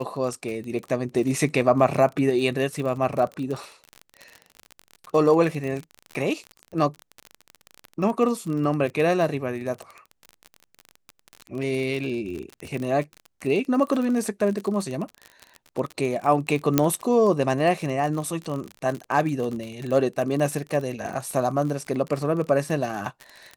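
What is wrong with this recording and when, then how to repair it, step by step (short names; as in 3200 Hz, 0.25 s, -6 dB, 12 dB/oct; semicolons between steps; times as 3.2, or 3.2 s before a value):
crackle 33/s -28 dBFS
16.78 pop -3 dBFS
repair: de-click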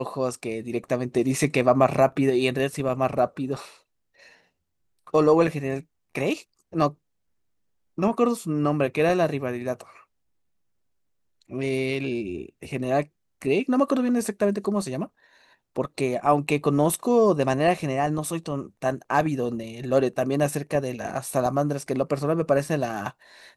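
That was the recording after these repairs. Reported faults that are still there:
none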